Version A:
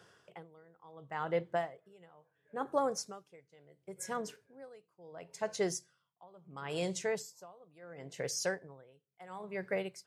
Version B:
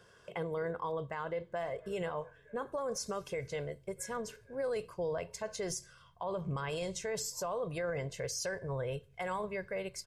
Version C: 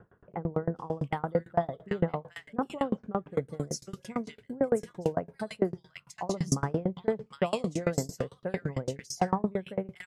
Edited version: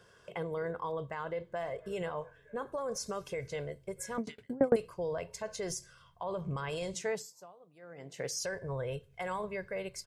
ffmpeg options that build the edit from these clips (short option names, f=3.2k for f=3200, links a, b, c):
-filter_complex "[1:a]asplit=3[a][b][c];[a]atrim=end=4.182[d];[2:a]atrim=start=4.178:end=4.762[e];[b]atrim=start=4.758:end=6.942[f];[0:a]atrim=start=6.938:end=8.432[g];[c]atrim=start=8.428[h];[d][e]acrossfade=d=0.004:c1=hsin:c2=hsin[i];[i][f]acrossfade=d=0.004:c1=hsin:c2=hsin[j];[j][g]acrossfade=d=0.004:c1=hsin:c2=hsin[k];[k][h]acrossfade=d=0.004:c1=hsin:c2=hsin"